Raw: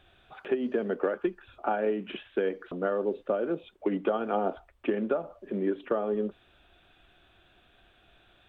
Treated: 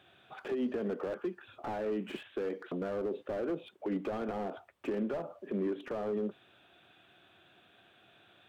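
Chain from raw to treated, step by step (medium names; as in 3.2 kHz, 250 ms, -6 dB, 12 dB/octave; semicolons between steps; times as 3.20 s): high-pass 110 Hz 24 dB/octave; peak limiter -25.5 dBFS, peak gain reduction 10 dB; slew-rate limiter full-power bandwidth 14 Hz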